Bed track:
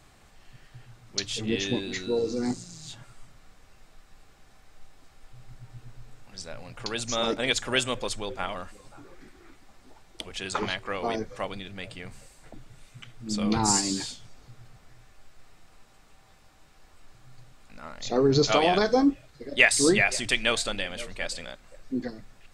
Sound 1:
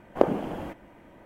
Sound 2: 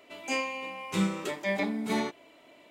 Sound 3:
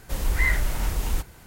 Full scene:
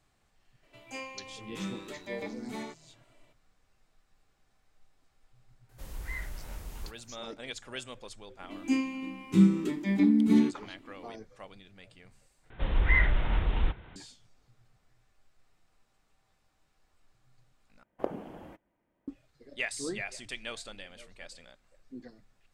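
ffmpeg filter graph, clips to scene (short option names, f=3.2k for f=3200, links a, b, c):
-filter_complex "[2:a]asplit=2[a][b];[3:a]asplit=2[c][d];[0:a]volume=-15dB[e];[b]lowshelf=f=410:t=q:w=3:g=11.5[f];[d]aresample=8000,aresample=44100[g];[1:a]agate=range=-13dB:threshold=-42dB:ratio=16:release=100:detection=peak[h];[e]asplit=3[i][j][k];[i]atrim=end=12.504[l];[g]atrim=end=1.46,asetpts=PTS-STARTPTS,volume=-1.5dB[m];[j]atrim=start=13.956:end=17.834[n];[h]atrim=end=1.25,asetpts=PTS-STARTPTS,volume=-12.5dB[o];[k]atrim=start=19.076[p];[a]atrim=end=2.7,asetpts=PTS-STARTPTS,volume=-10.5dB,afade=t=in:d=0.004:c=hsin,afade=t=out:st=2.696:d=0.004:c=hsin,adelay=630[q];[c]atrim=end=1.46,asetpts=PTS-STARTPTS,volume=-16dB,afade=t=in:d=0.004:c=hsin,afade=t=out:st=1.456:d=0.004:c=hsin,adelay=250929S[r];[f]atrim=end=2.7,asetpts=PTS-STARTPTS,volume=-7dB,afade=t=in:d=0.004:c=hsin,afade=t=out:st=2.696:d=0.004:c=hsin,adelay=8400[s];[l][m]acrossfade=d=0.004:c1=hsin:c2=hsin[t];[t][n]acrossfade=d=0.004:c1=hsin:c2=hsin[u];[u][o]acrossfade=d=0.004:c1=hsin:c2=hsin[v];[v][p]acrossfade=d=0.004:c1=hsin:c2=hsin[w];[w][q][r][s]amix=inputs=4:normalize=0"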